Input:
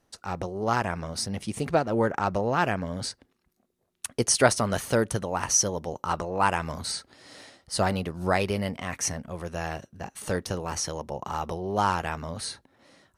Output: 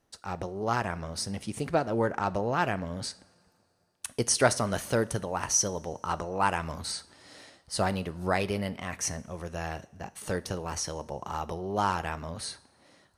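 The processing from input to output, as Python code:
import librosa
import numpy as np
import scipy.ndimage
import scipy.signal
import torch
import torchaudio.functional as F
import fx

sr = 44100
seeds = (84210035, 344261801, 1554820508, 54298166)

y = fx.rev_double_slope(x, sr, seeds[0], early_s=0.49, late_s=2.8, knee_db=-18, drr_db=15.5)
y = F.gain(torch.from_numpy(y), -3.0).numpy()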